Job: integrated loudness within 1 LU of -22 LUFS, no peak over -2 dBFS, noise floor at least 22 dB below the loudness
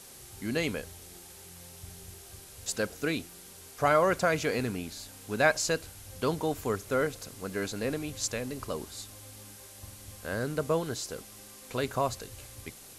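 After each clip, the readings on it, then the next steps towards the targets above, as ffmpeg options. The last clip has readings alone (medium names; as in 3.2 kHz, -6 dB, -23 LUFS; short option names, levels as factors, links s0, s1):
noise floor -50 dBFS; noise floor target -53 dBFS; loudness -31.0 LUFS; peak level -9.5 dBFS; loudness target -22.0 LUFS
-> -af "afftdn=nr=6:nf=-50"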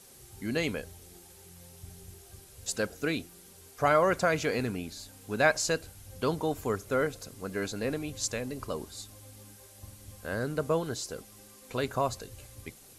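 noise floor -54 dBFS; loudness -31.0 LUFS; peak level -9.5 dBFS; loudness target -22.0 LUFS
-> -af "volume=2.82,alimiter=limit=0.794:level=0:latency=1"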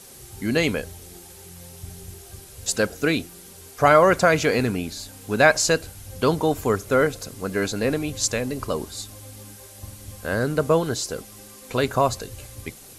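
loudness -22.5 LUFS; peak level -2.0 dBFS; noise floor -45 dBFS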